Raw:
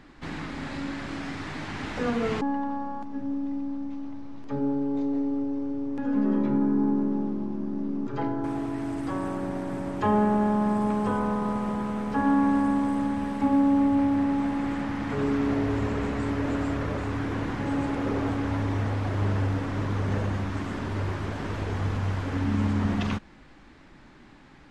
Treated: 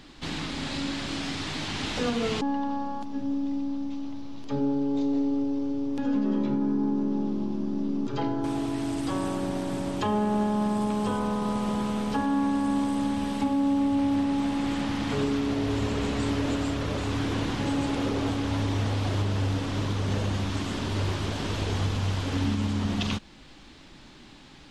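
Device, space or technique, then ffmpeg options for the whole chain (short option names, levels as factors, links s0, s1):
over-bright horn tweeter: -af "highshelf=f=2500:t=q:w=1.5:g=8,alimiter=limit=0.112:level=0:latency=1:release=487,volume=1.19"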